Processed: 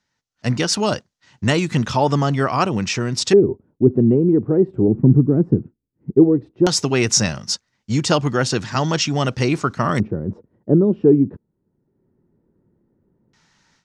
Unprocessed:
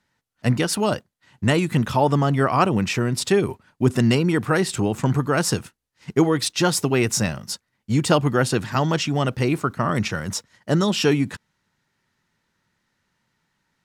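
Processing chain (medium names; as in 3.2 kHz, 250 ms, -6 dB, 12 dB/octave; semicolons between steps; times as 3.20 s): 4.88–6.11 s: graphic EQ 125/250/500/1000/4000/8000 Hz +5/+5/-5/-3/-8/-6 dB; level rider gain up to 15 dB; LFO low-pass square 0.15 Hz 380–6000 Hz; trim -4.5 dB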